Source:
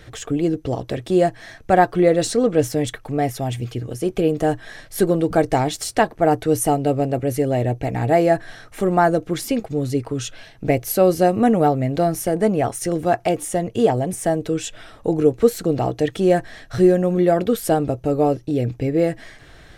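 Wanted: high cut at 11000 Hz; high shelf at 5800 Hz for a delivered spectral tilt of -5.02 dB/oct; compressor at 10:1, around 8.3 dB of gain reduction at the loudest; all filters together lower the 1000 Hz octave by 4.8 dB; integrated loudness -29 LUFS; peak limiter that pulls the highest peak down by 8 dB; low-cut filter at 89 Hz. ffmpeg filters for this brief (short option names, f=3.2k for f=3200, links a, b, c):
-af "highpass=89,lowpass=11k,equalizer=f=1k:t=o:g=-8.5,highshelf=f=5.8k:g=9,acompressor=threshold=-18dB:ratio=10,volume=-2.5dB,alimiter=limit=-19dB:level=0:latency=1"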